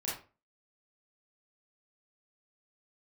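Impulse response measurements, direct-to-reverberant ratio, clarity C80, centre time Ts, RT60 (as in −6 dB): −7.5 dB, 10.0 dB, 43 ms, 0.35 s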